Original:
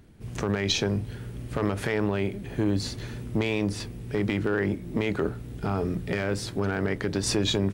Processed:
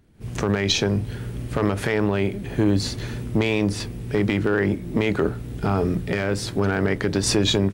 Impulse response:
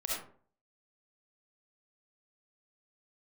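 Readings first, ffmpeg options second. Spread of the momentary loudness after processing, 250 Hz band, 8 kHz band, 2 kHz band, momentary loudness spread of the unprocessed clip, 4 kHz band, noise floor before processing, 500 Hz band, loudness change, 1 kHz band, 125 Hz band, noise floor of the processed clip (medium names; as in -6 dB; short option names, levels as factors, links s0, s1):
7 LU, +5.0 dB, +5.0 dB, +5.0 dB, 8 LU, +5.0 dB, -40 dBFS, +5.0 dB, +5.0 dB, +5.5 dB, +5.5 dB, -34 dBFS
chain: -af "dynaudnorm=f=130:g=3:m=3.98,volume=0.531"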